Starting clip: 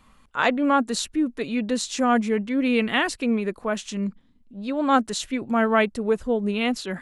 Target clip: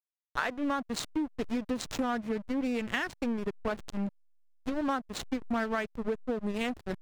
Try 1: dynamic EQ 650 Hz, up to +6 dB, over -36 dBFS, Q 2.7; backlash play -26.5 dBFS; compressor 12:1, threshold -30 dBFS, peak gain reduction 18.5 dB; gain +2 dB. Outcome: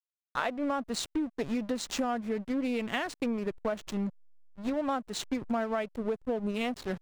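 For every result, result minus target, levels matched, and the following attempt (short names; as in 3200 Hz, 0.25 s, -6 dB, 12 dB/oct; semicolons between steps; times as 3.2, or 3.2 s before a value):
backlash: distortion -6 dB; 2000 Hz band -3.0 dB
dynamic EQ 650 Hz, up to +6 dB, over -36 dBFS, Q 2.7; backlash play -20.5 dBFS; compressor 12:1, threshold -30 dBFS, peak gain reduction 18 dB; gain +2 dB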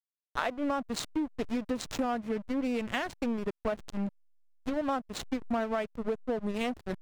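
2000 Hz band -3.0 dB
dynamic EQ 1700 Hz, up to +6 dB, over -36 dBFS, Q 2.7; backlash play -20.5 dBFS; compressor 12:1, threshold -30 dBFS, peak gain reduction 17.5 dB; gain +2 dB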